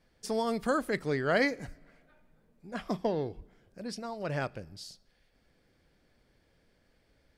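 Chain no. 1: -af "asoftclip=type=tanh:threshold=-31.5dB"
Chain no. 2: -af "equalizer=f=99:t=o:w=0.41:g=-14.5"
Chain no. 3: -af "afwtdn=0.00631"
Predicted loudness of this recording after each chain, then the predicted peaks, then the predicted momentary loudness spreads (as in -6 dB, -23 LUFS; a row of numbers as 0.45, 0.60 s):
-38.5, -32.5, -32.5 LUFS; -31.5, -14.5, -15.0 dBFS; 13, 17, 16 LU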